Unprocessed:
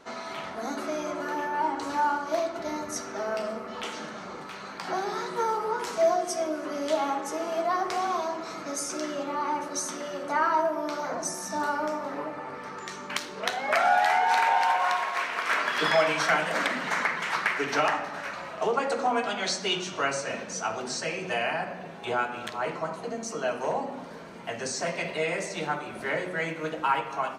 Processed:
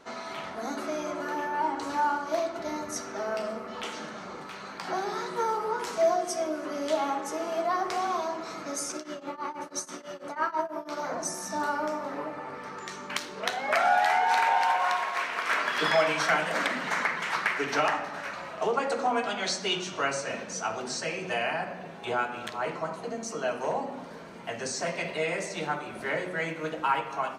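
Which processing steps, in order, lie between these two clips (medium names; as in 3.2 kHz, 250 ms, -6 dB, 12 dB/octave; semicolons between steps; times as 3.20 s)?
8.92–10.97 s: tremolo triangle 6.1 Hz, depth 95%; trim -1 dB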